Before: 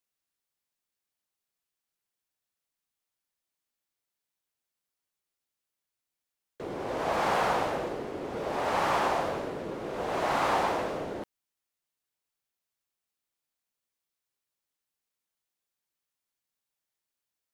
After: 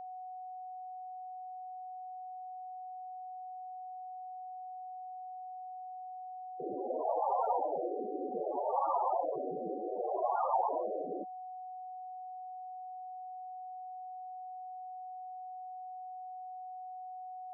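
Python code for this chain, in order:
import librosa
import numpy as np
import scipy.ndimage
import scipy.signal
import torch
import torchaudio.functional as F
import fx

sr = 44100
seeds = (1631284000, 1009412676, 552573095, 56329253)

y = fx.spec_topn(x, sr, count=8)
y = y + 10.0 ** (-42.0 / 20.0) * np.sin(2.0 * np.pi * 740.0 * np.arange(len(y)) / sr)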